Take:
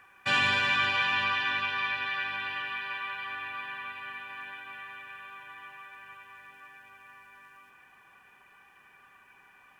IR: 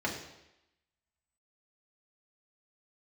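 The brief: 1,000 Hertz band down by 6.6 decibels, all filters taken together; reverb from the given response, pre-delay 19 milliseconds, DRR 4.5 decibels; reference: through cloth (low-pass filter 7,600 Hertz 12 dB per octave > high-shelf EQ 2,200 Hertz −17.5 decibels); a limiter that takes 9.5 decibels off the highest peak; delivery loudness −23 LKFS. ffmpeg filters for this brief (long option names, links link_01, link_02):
-filter_complex "[0:a]equalizer=frequency=1000:width_type=o:gain=-3.5,alimiter=limit=-23dB:level=0:latency=1,asplit=2[link_01][link_02];[1:a]atrim=start_sample=2205,adelay=19[link_03];[link_02][link_03]afir=irnorm=-1:irlink=0,volume=-12dB[link_04];[link_01][link_04]amix=inputs=2:normalize=0,lowpass=7600,highshelf=frequency=2200:gain=-17.5,volume=16dB"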